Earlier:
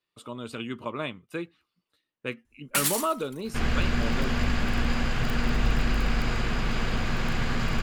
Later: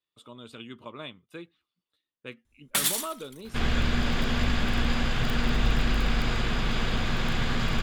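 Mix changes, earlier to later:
speech -8.5 dB; master: add bell 3500 Hz +8 dB 0.27 oct

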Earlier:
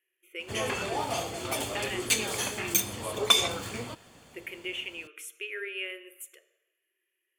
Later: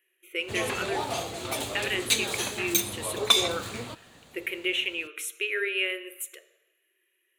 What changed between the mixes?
speech +8.0 dB; master: remove Butterworth band-stop 3900 Hz, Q 7.8

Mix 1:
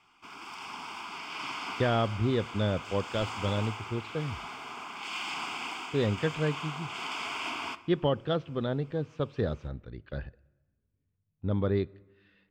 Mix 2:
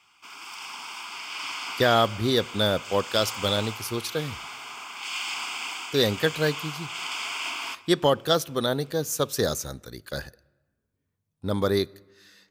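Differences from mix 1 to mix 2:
speech: remove ladder low-pass 3200 Hz, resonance 55%; master: add tilt +3.5 dB/oct

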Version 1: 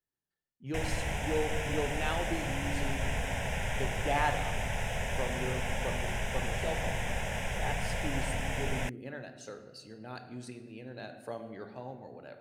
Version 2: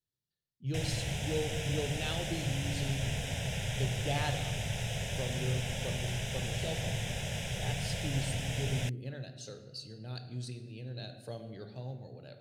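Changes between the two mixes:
background: add low shelf 73 Hz -11.5 dB; master: add graphic EQ 125/250/1000/2000/4000 Hz +10/-5/-11/-6/+9 dB

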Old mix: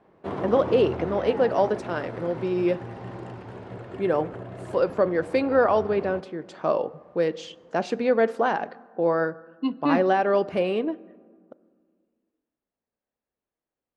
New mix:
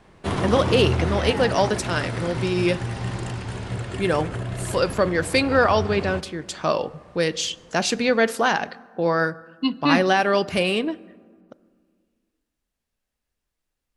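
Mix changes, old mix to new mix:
background: send on; master: remove band-pass 490 Hz, Q 0.73

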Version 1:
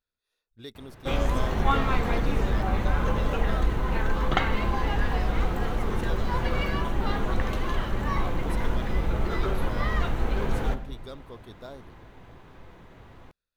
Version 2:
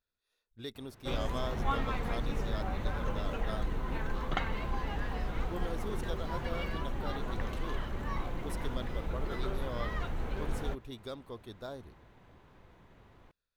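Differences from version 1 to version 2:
background -8.0 dB; reverb: off

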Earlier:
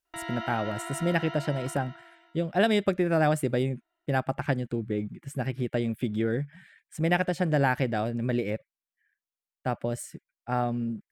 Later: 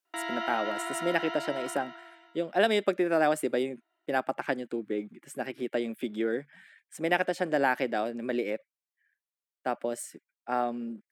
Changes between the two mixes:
background +3.0 dB; master: add HPF 260 Hz 24 dB/oct

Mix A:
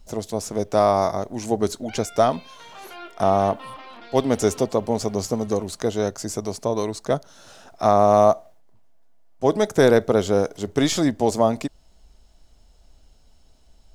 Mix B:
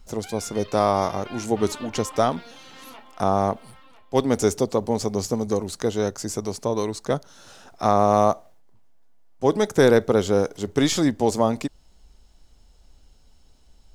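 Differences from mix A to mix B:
background: entry -1.65 s; master: add bell 650 Hz -7 dB 0.21 oct

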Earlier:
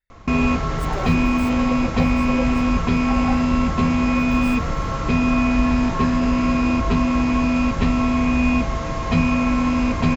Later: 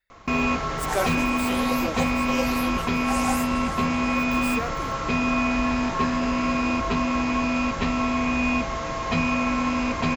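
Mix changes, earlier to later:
speech +8.5 dB; second sound: remove air absorption 400 m; master: add low shelf 270 Hz -11 dB

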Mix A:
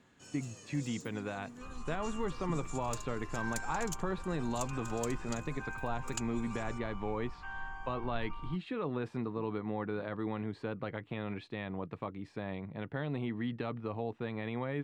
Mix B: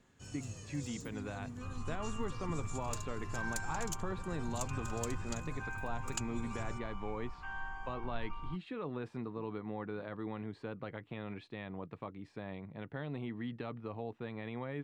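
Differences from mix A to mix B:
speech -4.5 dB; first sound: remove HPF 240 Hz 12 dB/oct

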